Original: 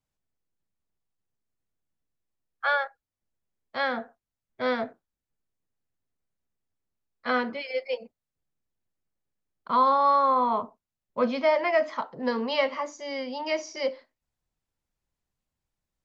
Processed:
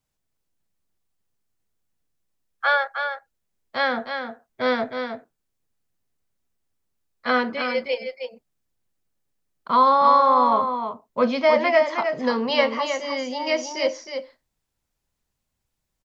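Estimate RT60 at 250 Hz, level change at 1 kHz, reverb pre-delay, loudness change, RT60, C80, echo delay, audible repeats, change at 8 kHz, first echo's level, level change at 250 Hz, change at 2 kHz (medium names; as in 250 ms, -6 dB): no reverb, +5.5 dB, no reverb, +5.0 dB, no reverb, no reverb, 313 ms, 1, no reading, -7.0 dB, +5.5 dB, +6.0 dB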